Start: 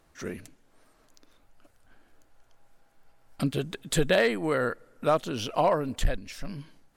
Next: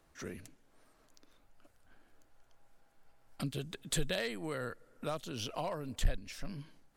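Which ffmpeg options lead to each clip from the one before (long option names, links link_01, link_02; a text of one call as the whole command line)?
ffmpeg -i in.wav -filter_complex "[0:a]acrossover=split=130|3000[link_01][link_02][link_03];[link_02]acompressor=threshold=-39dB:ratio=2[link_04];[link_01][link_04][link_03]amix=inputs=3:normalize=0,volume=-4.5dB" out.wav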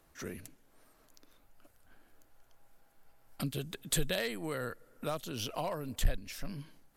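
ffmpeg -i in.wav -af "equalizer=frequency=13000:width_type=o:width=0.52:gain=10.5,volume=1.5dB" out.wav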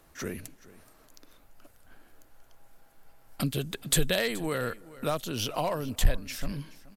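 ffmpeg -i in.wav -af "aecho=1:1:426:0.112,volume=6.5dB" out.wav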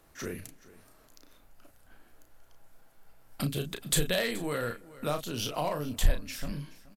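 ffmpeg -i in.wav -filter_complex "[0:a]asplit=2[link_01][link_02];[link_02]adelay=34,volume=-7dB[link_03];[link_01][link_03]amix=inputs=2:normalize=0,volume=-2.5dB" out.wav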